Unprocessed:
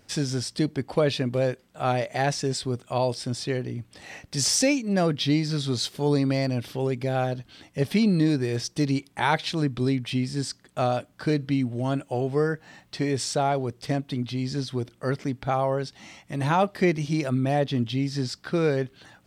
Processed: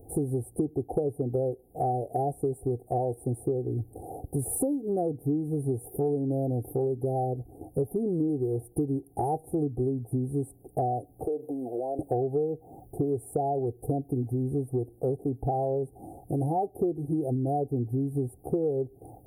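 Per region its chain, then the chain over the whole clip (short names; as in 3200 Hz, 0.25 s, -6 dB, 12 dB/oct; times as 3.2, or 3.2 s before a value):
11.25–11.99 resonant high-pass 560 Hz, resonance Q 1.8 + compressor 4:1, threshold -36 dBFS
whole clip: Chebyshev band-stop 750–9800 Hz, order 5; comb 2.5 ms, depth 69%; compressor 6:1, threshold -35 dBFS; gain +9 dB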